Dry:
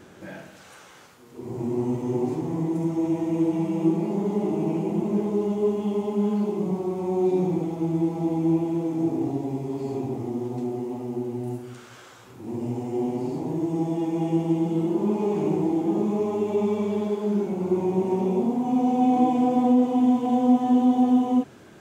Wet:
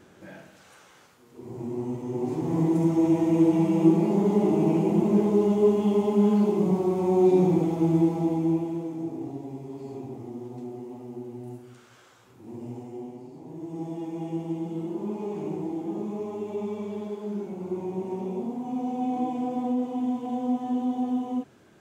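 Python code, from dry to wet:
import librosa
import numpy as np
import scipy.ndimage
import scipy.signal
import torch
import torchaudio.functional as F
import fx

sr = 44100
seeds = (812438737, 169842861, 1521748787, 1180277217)

y = fx.gain(x, sr, db=fx.line((2.12, -5.5), (2.59, 3.0), (7.97, 3.0), (9.08, -8.5), (12.77, -8.5), (13.31, -16.0), (13.85, -8.0)))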